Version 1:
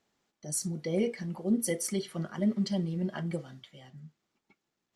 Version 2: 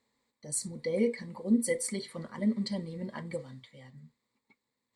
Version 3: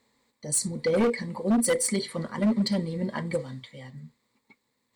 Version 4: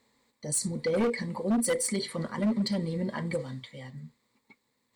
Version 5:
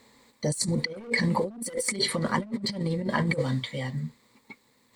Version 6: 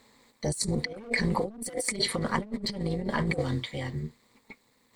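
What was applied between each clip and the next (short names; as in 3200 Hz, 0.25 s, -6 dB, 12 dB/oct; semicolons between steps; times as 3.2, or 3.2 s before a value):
ripple EQ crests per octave 0.98, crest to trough 12 dB; gain -2.5 dB
hard clip -27.5 dBFS, distortion -8 dB; gain +8.5 dB
limiter -22.5 dBFS, peak gain reduction 3.5 dB
negative-ratio compressor -34 dBFS, ratio -0.5; gain +6.5 dB
AM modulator 220 Hz, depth 50%; gain +1 dB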